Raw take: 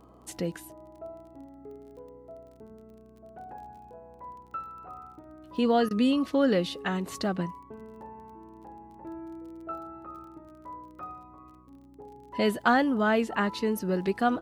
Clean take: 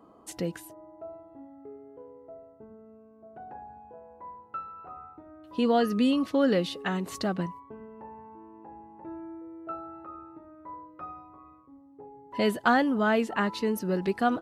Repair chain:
click removal
hum removal 61.8 Hz, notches 6
repair the gap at 0:05.89, 17 ms

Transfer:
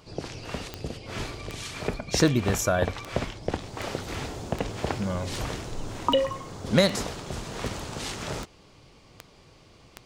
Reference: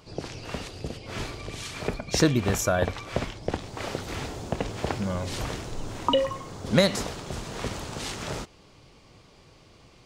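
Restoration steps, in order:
clipped peaks rebuilt −6.5 dBFS
click removal

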